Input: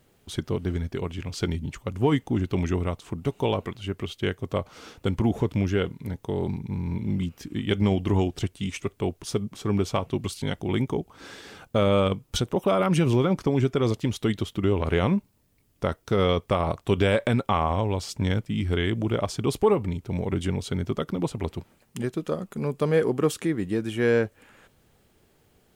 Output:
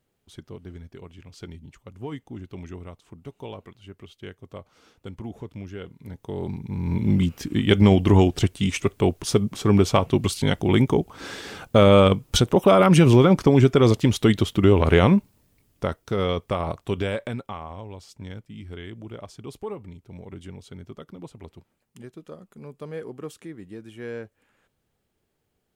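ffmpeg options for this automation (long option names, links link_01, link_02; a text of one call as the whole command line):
ffmpeg -i in.wav -af "volume=7dB,afade=type=in:start_time=5.79:duration=0.95:silence=0.237137,afade=type=in:start_time=6.74:duration=0.33:silence=0.446684,afade=type=out:start_time=14.93:duration=1.11:silence=0.354813,afade=type=out:start_time=16.71:duration=0.89:silence=0.281838" out.wav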